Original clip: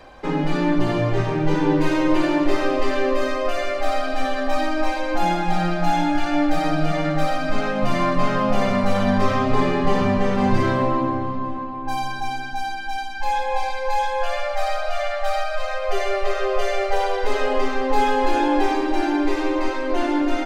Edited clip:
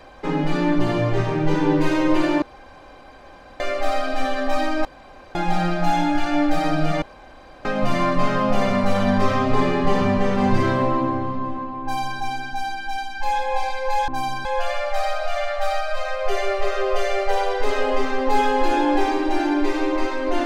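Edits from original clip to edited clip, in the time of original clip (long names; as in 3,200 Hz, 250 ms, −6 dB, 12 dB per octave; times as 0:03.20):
0:02.42–0:03.60: fill with room tone
0:04.85–0:05.35: fill with room tone
0:07.02–0:07.65: fill with room tone
0:11.82–0:12.19: duplicate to 0:14.08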